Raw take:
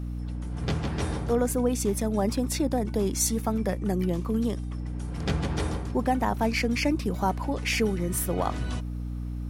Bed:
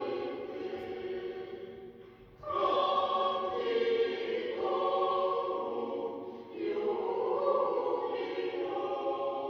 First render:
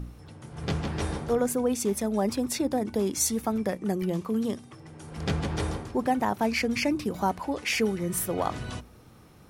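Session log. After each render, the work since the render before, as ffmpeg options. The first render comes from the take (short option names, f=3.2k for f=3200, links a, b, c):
-af "bandreject=f=60:t=h:w=4,bandreject=f=120:t=h:w=4,bandreject=f=180:t=h:w=4,bandreject=f=240:t=h:w=4,bandreject=f=300:t=h:w=4"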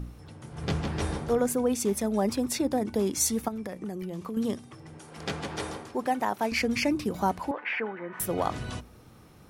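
-filter_complex "[0:a]asettb=1/sr,asplit=3[a][b][c];[a]atrim=end=3.484[d];[b]atrim=start=3.48:end=4.37,asetpts=PTS-STARTPTS,afade=t=in:d=0.004:c=qsin,afade=t=out:st=0.886:d=0.004:c=qsin,acompressor=threshold=-31dB:ratio=12:attack=3.2:release=140:knee=1:detection=peak[e];[c]atrim=start=4.366[f];[d][e]acrossfade=d=0.004:c1=hsin:c2=qsin[g];[g][f]acrossfade=d=0.004:c1=qsin:c2=hsin,asettb=1/sr,asplit=3[h][i][j];[h]atrim=end=4.994[k];[i]atrim=start=4.99:end=6.52,asetpts=PTS-STARTPTS,afade=t=in:d=0.004:c=qsin,afade=t=out:st=1.526:d=0.004:c=qsin,highpass=f=390:p=1[l];[j]atrim=start=6.516[m];[k][l]acrossfade=d=0.004:c1=hsin:c2=qsin[n];[n][m]acrossfade=d=0.004:c1=qsin:c2=hsin,asettb=1/sr,asplit=3[o][p][q];[o]atrim=end=7.514[r];[p]atrim=start=7.51:end=8.2,asetpts=PTS-STARTPTS,afade=t=in:d=0.004:c=qsin,afade=t=out:st=0.686:d=0.004:c=qsin,highpass=420,equalizer=f=420:t=q:w=4:g=-5,equalizer=f=930:t=q:w=4:g=7,equalizer=f=1.6k:t=q:w=4:g=8,lowpass=f=2.3k:w=0.5412,lowpass=f=2.3k:w=1.3066[s];[q]atrim=start=8.196[t];[r][s]acrossfade=d=0.004:c1=hsin:c2=qsin[u];[u][t]acrossfade=d=0.004:c1=qsin:c2=hsin"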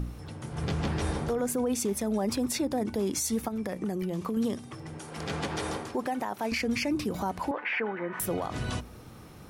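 -filter_complex "[0:a]asplit=2[a][b];[b]acompressor=threshold=-35dB:ratio=6,volume=-2dB[c];[a][c]amix=inputs=2:normalize=0,alimiter=limit=-21dB:level=0:latency=1:release=64"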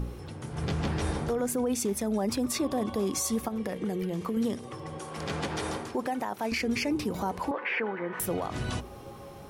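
-filter_complex "[1:a]volume=-14dB[a];[0:a][a]amix=inputs=2:normalize=0"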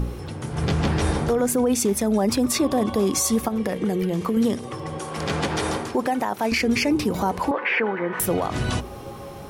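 -af "volume=8dB"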